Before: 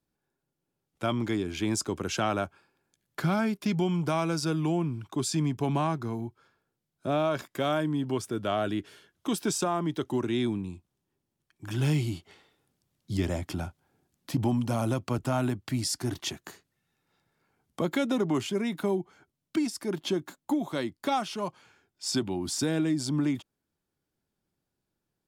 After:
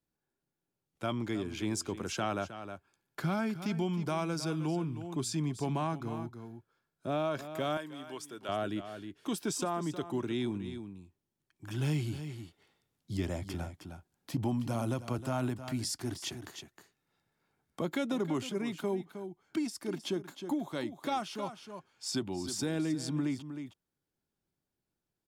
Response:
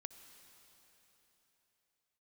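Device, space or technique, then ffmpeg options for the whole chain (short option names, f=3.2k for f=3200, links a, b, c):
ducked delay: -filter_complex "[0:a]asplit=3[a][b][c];[b]adelay=313,volume=-7.5dB[d];[c]apad=whole_len=1128637[e];[d][e]sidechaincompress=threshold=-29dB:ratio=8:attack=7.5:release=580[f];[a][f]amix=inputs=2:normalize=0,asettb=1/sr,asplit=3[g][h][i];[g]atrim=end=7.774[j];[h]atrim=start=7.77:end=8.49,asetpts=PTS-STARTPTS,afade=t=in:d=0.004:c=qsin,afade=t=out:st=0.716:d=0.004:c=qsin,highpass=f=930:p=1[k];[i]atrim=start=8.486[l];[j][k]acrossfade=d=0.004:c1=hsin:c2=qsin[m];[m][l]acrossfade=d=0.004:c1=qsin:c2=hsin,volume=-5.5dB"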